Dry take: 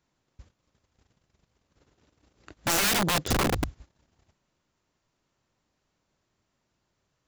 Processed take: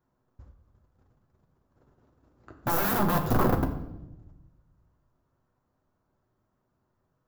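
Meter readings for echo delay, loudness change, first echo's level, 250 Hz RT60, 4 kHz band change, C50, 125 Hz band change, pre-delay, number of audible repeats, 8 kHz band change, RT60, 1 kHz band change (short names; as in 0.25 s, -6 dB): none, -1.0 dB, none, 1.4 s, -14.0 dB, 9.5 dB, +3.5 dB, 8 ms, none, -12.5 dB, 0.95 s, +2.0 dB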